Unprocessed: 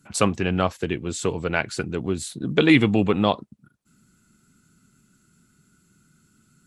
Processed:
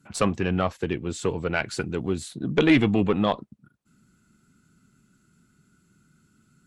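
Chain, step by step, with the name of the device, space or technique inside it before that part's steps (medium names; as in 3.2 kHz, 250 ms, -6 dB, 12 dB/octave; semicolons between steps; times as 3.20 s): 1.55–2.20 s: treble shelf 3.6 kHz +5.5 dB; tube preamp driven hard (valve stage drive 8 dB, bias 0.3; treble shelf 4.5 kHz -7 dB)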